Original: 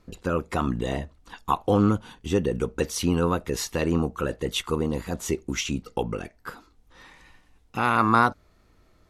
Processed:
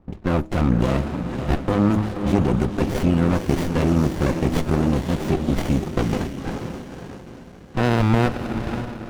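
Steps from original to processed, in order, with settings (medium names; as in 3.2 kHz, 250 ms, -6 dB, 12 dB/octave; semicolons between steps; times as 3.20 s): comb of notches 460 Hz; de-hum 105.6 Hz, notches 3; in parallel at -0.5 dB: compressor with a negative ratio -28 dBFS; on the sum: level-controlled noise filter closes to 820 Hz, open at -20 dBFS; echo that smears into a reverb 536 ms, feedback 42%, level -7 dB; sliding maximum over 33 samples; trim +2.5 dB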